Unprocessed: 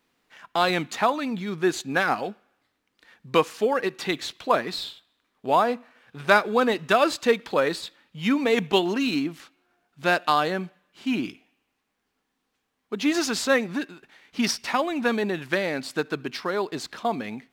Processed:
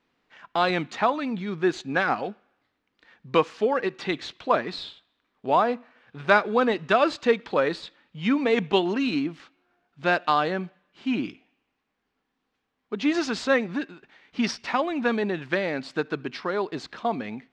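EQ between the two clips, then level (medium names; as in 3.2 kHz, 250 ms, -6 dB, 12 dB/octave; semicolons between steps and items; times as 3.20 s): distance through air 130 m; 0.0 dB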